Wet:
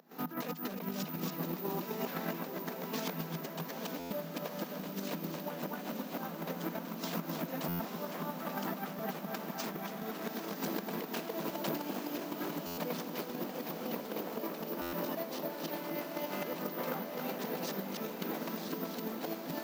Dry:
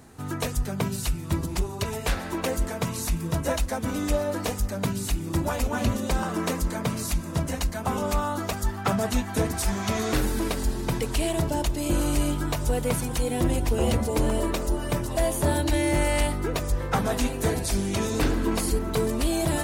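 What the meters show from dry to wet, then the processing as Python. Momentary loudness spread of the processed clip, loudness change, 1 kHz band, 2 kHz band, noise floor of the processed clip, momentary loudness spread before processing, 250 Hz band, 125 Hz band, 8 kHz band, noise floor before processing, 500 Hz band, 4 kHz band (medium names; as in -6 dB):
3 LU, -11.5 dB, -9.5 dB, -10.5 dB, -44 dBFS, 5 LU, -10.5 dB, -17.5 dB, -17.5 dB, -34 dBFS, -11.0 dB, -11.0 dB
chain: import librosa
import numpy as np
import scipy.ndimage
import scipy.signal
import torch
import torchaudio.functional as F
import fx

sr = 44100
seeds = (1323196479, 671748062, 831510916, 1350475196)

y = fx.volume_shaper(x, sr, bpm=117, per_beat=2, depth_db=-22, release_ms=109.0, shape='slow start')
y = 10.0 ** (-22.0 / 20.0) * (np.abs((y / 10.0 ** (-22.0 / 20.0) + 3.0) % 4.0 - 2.0) - 1.0)
y = (np.kron(y[::3], np.eye(3)[0]) * 3)[:len(y)]
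y = np.convolve(y, np.full(5, 1.0 / 5))[:len(y)]
y = np.clip(y, -10.0 ** (-28.5 / 20.0), 10.0 ** (-28.5 / 20.0))
y = scipy.signal.sosfilt(scipy.signal.cheby1(6, 3, 160.0, 'highpass', fs=sr, output='sos'), y)
y = y + 10.0 ** (-5.5 / 20.0) * np.pad(y, (int(276 * sr / 1000.0), 0))[:len(y)]
y = fx.over_compress(y, sr, threshold_db=-38.0, ratio=-0.5)
y = fx.echo_diffused(y, sr, ms=915, feedback_pct=59, wet_db=-7)
y = fx.buffer_glitch(y, sr, at_s=(3.99, 7.68, 12.66, 14.81), block=512, repeats=9)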